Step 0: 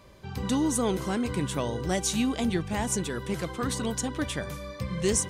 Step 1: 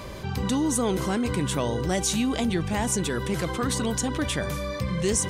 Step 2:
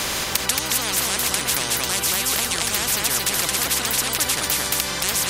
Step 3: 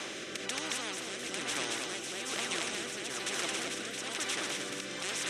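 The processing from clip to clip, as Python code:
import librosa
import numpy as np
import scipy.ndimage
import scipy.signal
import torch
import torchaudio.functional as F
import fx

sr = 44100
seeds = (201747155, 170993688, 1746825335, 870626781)

y1 = fx.env_flatten(x, sr, amount_pct=50)
y2 = fx.auto_swell(y1, sr, attack_ms=105.0)
y2 = y2 + 10.0 ** (-3.5 / 20.0) * np.pad(y2, (int(224 * sr / 1000.0), 0))[:len(y2)]
y2 = fx.spectral_comp(y2, sr, ratio=10.0)
y2 = y2 * librosa.db_to_amplitude(8.0)
y3 = fx.rotary(y2, sr, hz=1.1)
y3 = fx.cabinet(y3, sr, low_hz=220.0, low_slope=12, high_hz=7800.0, hz=(340.0, 950.0, 4600.0, 7000.0), db=(6, -5, -9, -5))
y3 = y3 + 10.0 ** (-6.5 / 20.0) * np.pad(y3, (int(1061 * sr / 1000.0), 0))[:len(y3)]
y3 = y3 * librosa.db_to_amplitude(-8.5)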